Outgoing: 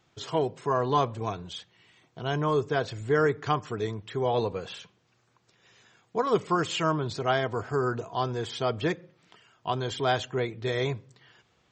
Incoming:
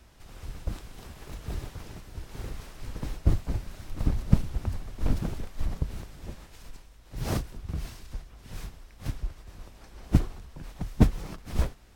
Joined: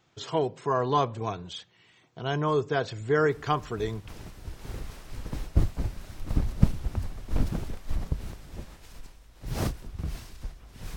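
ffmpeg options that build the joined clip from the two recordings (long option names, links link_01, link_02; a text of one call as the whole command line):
ffmpeg -i cue0.wav -i cue1.wav -filter_complex "[1:a]asplit=2[link_01][link_02];[0:a]apad=whole_dur=10.96,atrim=end=10.96,atrim=end=4.082[link_03];[link_02]atrim=start=1.778:end=8.66[link_04];[link_01]atrim=start=1:end=1.78,asetpts=PTS-STARTPTS,volume=-8dB,afade=type=in:duration=0.004:curve=hsin,afade=type=out:start_time=0.776:duration=0.004:curve=hsin,adelay=3300[link_05];[link_03][link_04]acrossfade=duration=0.004:curve1=hsin:curve2=hsin[link_06];[link_06][link_05]amix=inputs=2:normalize=0" out.wav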